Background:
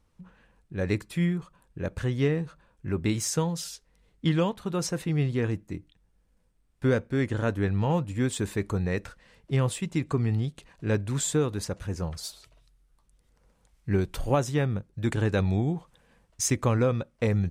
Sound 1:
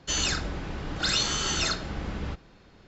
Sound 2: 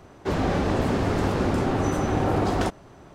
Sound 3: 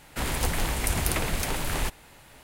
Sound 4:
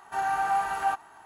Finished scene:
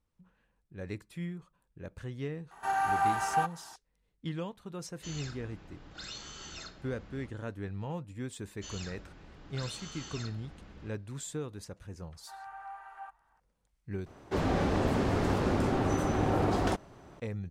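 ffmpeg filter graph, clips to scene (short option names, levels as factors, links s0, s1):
-filter_complex "[4:a]asplit=2[s0][s1];[1:a]asplit=2[s2][s3];[0:a]volume=0.237[s4];[s1]acrossover=split=590 2500:gain=0.0891 1 0.158[s5][s6][s7];[s5][s6][s7]amix=inputs=3:normalize=0[s8];[s4]asplit=2[s9][s10];[s9]atrim=end=14.064[s11];[2:a]atrim=end=3.14,asetpts=PTS-STARTPTS,volume=0.562[s12];[s10]atrim=start=17.196[s13];[s0]atrim=end=1.25,asetpts=PTS-STARTPTS,volume=0.794,afade=t=in:d=0.004:c=hsin,afade=t=out:st=1.246:d=0.004:c=hsin,adelay=2510[s14];[s2]atrim=end=2.87,asetpts=PTS-STARTPTS,volume=0.126,afade=t=in:d=0.004:c=hsin,afade=t=out:st=2.866:d=0.004:c=hsin,adelay=4950[s15];[s3]atrim=end=2.87,asetpts=PTS-STARTPTS,volume=0.126,afade=t=in:d=0.004:c=hsin,afade=t=out:st=2.866:d=0.004:c=hsin,adelay=8540[s16];[s8]atrim=end=1.25,asetpts=PTS-STARTPTS,volume=0.141,afade=t=in:d=0.004:c=hsin,afade=t=out:st=1.246:d=0.004:c=hsin,adelay=12150[s17];[s11][s12]acrossfade=d=0.004:c1=hsin:c2=hsin[s18];[s18][s13]acrossfade=d=0.004:c1=hsin:c2=hsin[s19];[s19][s14][s15][s16][s17]amix=inputs=5:normalize=0"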